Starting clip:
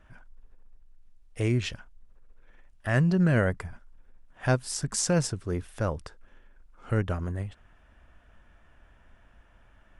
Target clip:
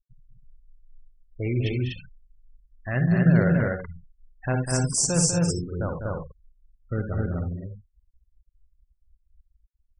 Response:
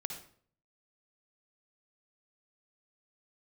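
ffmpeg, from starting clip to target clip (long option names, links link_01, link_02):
-filter_complex "[0:a]asplit=2[link_01][link_02];[link_02]acrusher=samples=19:mix=1:aa=0.000001:lfo=1:lforange=19:lforate=0.48,volume=-10dB[link_03];[link_01][link_03]amix=inputs=2:normalize=0[link_04];[1:a]atrim=start_sample=2205,atrim=end_sample=4410[link_05];[link_04][link_05]afir=irnorm=-1:irlink=0,afftfilt=real='re*gte(hypot(re,im),0.0316)':imag='im*gte(hypot(re,im),0.0316)':win_size=1024:overlap=0.75,crystalizer=i=2.5:c=0,aecho=1:1:198.3|244.9:0.447|0.794,volume=-2.5dB"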